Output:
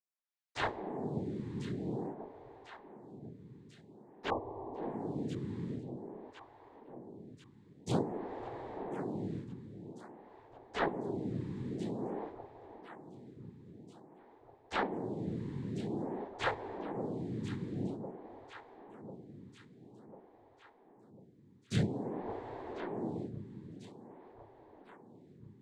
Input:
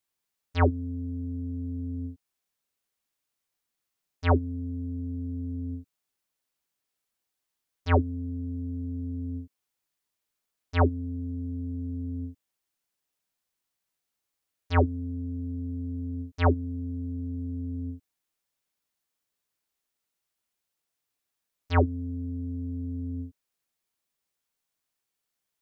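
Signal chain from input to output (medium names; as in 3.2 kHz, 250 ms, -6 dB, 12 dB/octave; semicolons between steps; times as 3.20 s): comb filter that takes the minimum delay 1.1 ms; waveshaping leveller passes 2; noise-vocoded speech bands 6; 4.30–4.83 s: brick-wall FIR low-pass 1.2 kHz; echo whose repeats swap between lows and highs 523 ms, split 810 Hz, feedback 76%, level -9.5 dB; lamp-driven phase shifter 0.5 Hz; trim -6 dB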